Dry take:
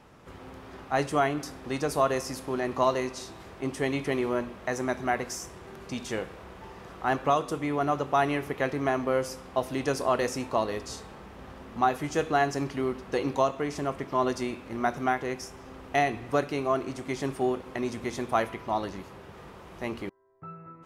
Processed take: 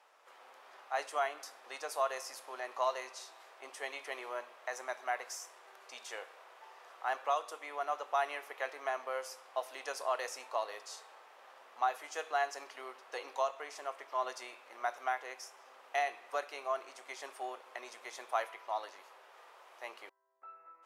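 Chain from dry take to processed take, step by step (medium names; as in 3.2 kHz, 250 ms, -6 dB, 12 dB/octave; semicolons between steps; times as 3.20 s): high-pass 590 Hz 24 dB/octave; trim -7 dB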